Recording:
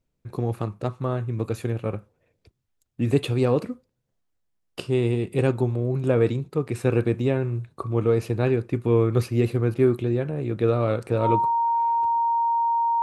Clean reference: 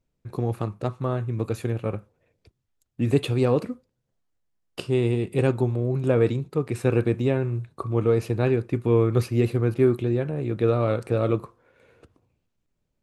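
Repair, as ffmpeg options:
-af "bandreject=f=930:w=30"

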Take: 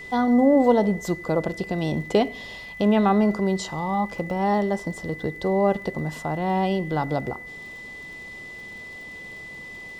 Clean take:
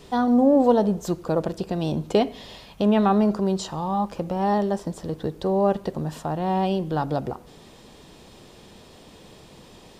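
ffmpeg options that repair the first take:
-af "adeclick=t=4,bandreject=f=2000:w=30"

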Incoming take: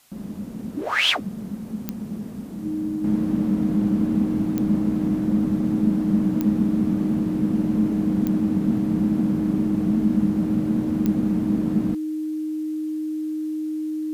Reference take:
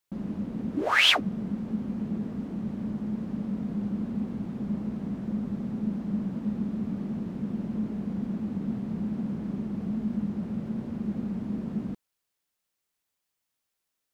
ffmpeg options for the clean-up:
-af "adeclick=t=4,bandreject=f=310:w=30,agate=range=0.0891:threshold=0.0631,asetnsamples=n=441:p=0,asendcmd='3.04 volume volume -9dB',volume=1"

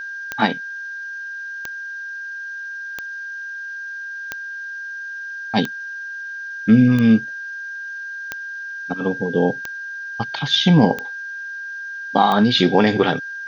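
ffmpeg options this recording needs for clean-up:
-af "adeclick=t=4,bandreject=f=1600:w=30,afftdn=nr=30:nf=-31"

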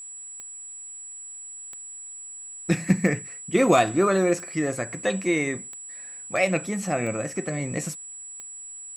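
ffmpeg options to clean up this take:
-af "adeclick=t=4,bandreject=f=7800:w=30,agate=range=0.0891:threshold=0.0251"

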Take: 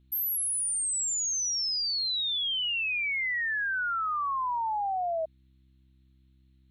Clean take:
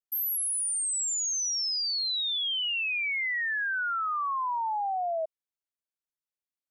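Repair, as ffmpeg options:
-af "bandreject=f=65.1:t=h:w=4,bandreject=f=130.2:t=h:w=4,bandreject=f=195.3:t=h:w=4,bandreject=f=260.4:t=h:w=4,bandreject=f=325.5:t=h:w=4,agate=range=0.0891:threshold=0.002"

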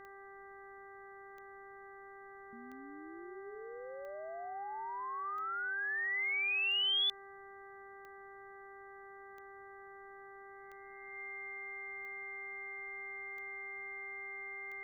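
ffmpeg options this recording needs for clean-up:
-af "adeclick=t=4,bandreject=f=393.9:t=h:w=4,bandreject=f=787.8:t=h:w=4,bandreject=f=1181.7:t=h:w=4,bandreject=f=1575.6:t=h:w=4,bandreject=f=1969.5:t=h:w=4,bandreject=f=2100:w=30,agate=range=0.0891:threshold=0.00562"

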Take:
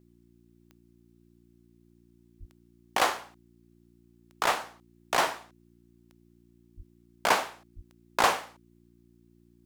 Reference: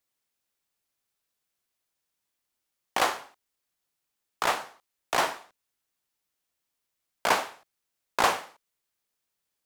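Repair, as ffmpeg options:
-filter_complex "[0:a]adeclick=t=4,bandreject=f=58.4:t=h:w=4,bandreject=f=116.8:t=h:w=4,bandreject=f=175.2:t=h:w=4,bandreject=f=233.6:t=h:w=4,bandreject=f=292:t=h:w=4,bandreject=f=350.4:t=h:w=4,asplit=3[s0][s1][s2];[s0]afade=t=out:st=2.39:d=0.02[s3];[s1]highpass=f=140:w=0.5412,highpass=f=140:w=1.3066,afade=t=in:st=2.39:d=0.02,afade=t=out:st=2.51:d=0.02[s4];[s2]afade=t=in:st=2.51:d=0.02[s5];[s3][s4][s5]amix=inputs=3:normalize=0,asplit=3[s6][s7][s8];[s6]afade=t=out:st=6.76:d=0.02[s9];[s7]highpass=f=140:w=0.5412,highpass=f=140:w=1.3066,afade=t=in:st=6.76:d=0.02,afade=t=out:st=6.88:d=0.02[s10];[s8]afade=t=in:st=6.88:d=0.02[s11];[s9][s10][s11]amix=inputs=3:normalize=0,asplit=3[s12][s13][s14];[s12]afade=t=out:st=7.75:d=0.02[s15];[s13]highpass=f=140:w=0.5412,highpass=f=140:w=1.3066,afade=t=in:st=7.75:d=0.02,afade=t=out:st=7.87:d=0.02[s16];[s14]afade=t=in:st=7.87:d=0.02[s17];[s15][s16][s17]amix=inputs=3:normalize=0"

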